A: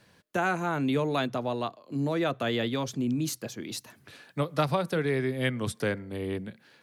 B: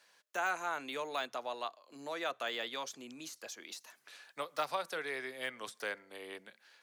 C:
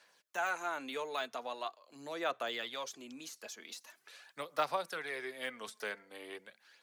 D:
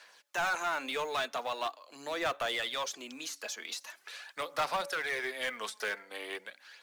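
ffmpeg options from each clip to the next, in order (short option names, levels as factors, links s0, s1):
-af "deesser=0.95,highpass=740,equalizer=f=6400:t=o:w=0.77:g=4.5,volume=0.631"
-af "aphaser=in_gain=1:out_gain=1:delay=4.7:decay=0.41:speed=0.43:type=sinusoidal,volume=0.841"
-filter_complex "[0:a]asplit=2[s0][s1];[s1]highpass=f=720:p=1,volume=10,asoftclip=type=tanh:threshold=0.119[s2];[s0][s2]amix=inputs=2:normalize=0,lowpass=f=6800:p=1,volume=0.501,acrusher=bits=7:mode=log:mix=0:aa=0.000001,bandreject=f=283.6:t=h:w=4,bandreject=f=567.2:t=h:w=4,bandreject=f=850.8:t=h:w=4,volume=0.631"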